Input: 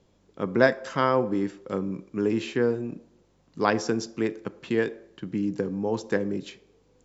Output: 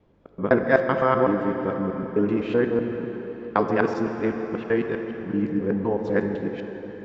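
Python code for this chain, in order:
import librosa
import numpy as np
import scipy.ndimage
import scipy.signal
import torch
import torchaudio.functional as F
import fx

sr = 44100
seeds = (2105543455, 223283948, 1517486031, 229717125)

y = fx.local_reverse(x, sr, ms=127.0)
y = scipy.signal.sosfilt(scipy.signal.butter(2, 2200.0, 'lowpass', fs=sr, output='sos'), y)
y = fx.rev_plate(y, sr, seeds[0], rt60_s=4.8, hf_ratio=0.8, predelay_ms=0, drr_db=5.0)
y = y * librosa.db_to_amplitude(2.5)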